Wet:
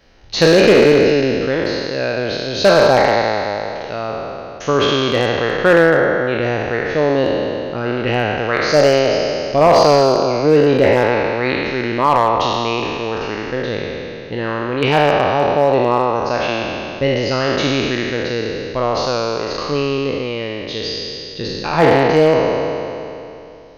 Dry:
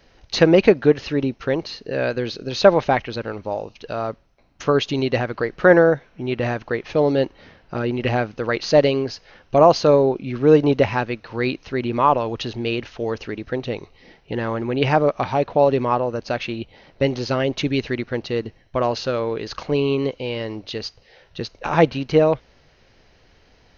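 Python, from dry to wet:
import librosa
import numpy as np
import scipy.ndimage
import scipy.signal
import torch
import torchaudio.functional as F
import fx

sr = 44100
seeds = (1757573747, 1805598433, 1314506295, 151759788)

y = fx.spec_trails(x, sr, decay_s=2.82)
y = np.clip(10.0 ** (4.5 / 20.0) * y, -1.0, 1.0) / 10.0 ** (4.5 / 20.0)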